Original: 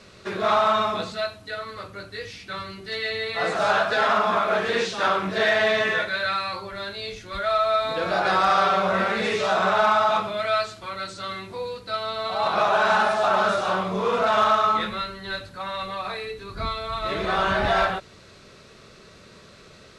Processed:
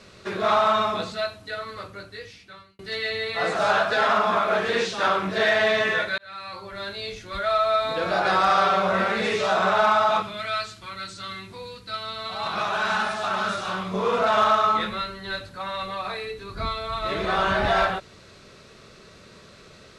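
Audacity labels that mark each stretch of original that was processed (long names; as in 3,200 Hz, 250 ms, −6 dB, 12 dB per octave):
1.820000	2.790000	fade out
6.180000	6.880000	fade in
10.220000	13.940000	parametric band 600 Hz −9.5 dB 1.7 octaves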